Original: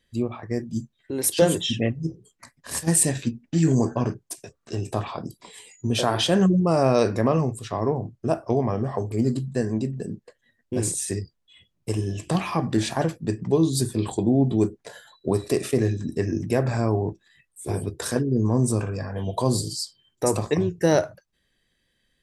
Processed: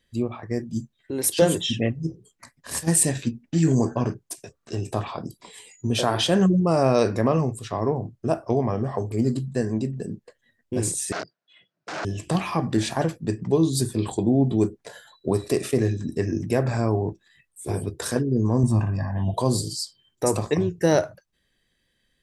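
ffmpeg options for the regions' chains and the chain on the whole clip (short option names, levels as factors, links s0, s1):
-filter_complex "[0:a]asettb=1/sr,asplit=3[s0][s1][s2];[s0]atrim=end=11.124[s3];[s1]atrim=start=11.12:end=12.05,asetpts=PTS-STARTPTS,afade=t=in:d=0.004:c=qsin,afade=t=out:st=0.926:d=0.004:c=qsin,aeval=exprs='(mod(23.7*val(0)+1,2)-1)/23.7':c=same,highpass=f=160:w=0.5412,highpass=f=160:w=1.3066,equalizer=f=230:t=q:w=4:g=-7,equalizer=f=660:t=q:w=4:g=9,equalizer=f=1500:t=q:w=4:g=10,equalizer=f=3300:t=q:w=4:g=-4,lowpass=f=5600:w=0.5412,lowpass=f=5600:w=1.3066[s4];[s2]atrim=start=12.046[s5];[s3][s4]acrossfade=d=0.004:c1=hsin:c2=qsin[s6];[s6][s5]acrossfade=d=0.004:c1=qsin:c2=hsin,asettb=1/sr,asplit=3[s7][s8][s9];[s7]atrim=end=18.634[s10];[s8]atrim=start=18.63:end=19.34,asetpts=PTS-STARTPTS,afade=t=in:d=0.004:c=qsin,afade=t=out:st=0.706:d=0.004:c=qsin,lowpass=f=1600:p=1,aecho=1:1:1.1:0.98,atrim=end_sample=31311[s11];[s9]atrim=start=19.336[s12];[s10][s11]acrossfade=d=0.004:c1=hsin:c2=qsin[s13];[s13][s12]acrossfade=d=0.004:c1=qsin:c2=hsin"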